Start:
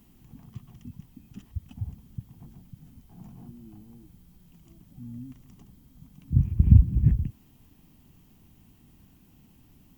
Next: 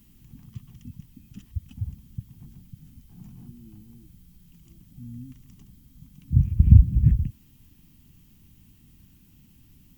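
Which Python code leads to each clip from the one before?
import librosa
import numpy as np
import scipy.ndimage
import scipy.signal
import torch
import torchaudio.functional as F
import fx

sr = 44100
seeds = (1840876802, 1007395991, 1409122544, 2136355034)

y = fx.peak_eq(x, sr, hz=650.0, db=-14.0, octaves=1.9)
y = y * librosa.db_to_amplitude(3.5)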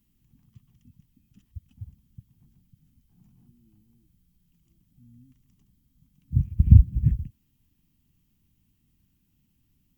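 y = fx.upward_expand(x, sr, threshold_db=-35.0, expansion=1.5)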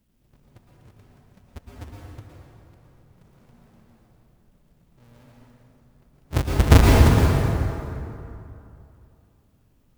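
y = fx.halfwave_hold(x, sr)
y = fx.rev_plate(y, sr, seeds[0], rt60_s=2.8, hf_ratio=0.6, predelay_ms=100, drr_db=-3.0)
y = y * librosa.db_to_amplitude(-4.0)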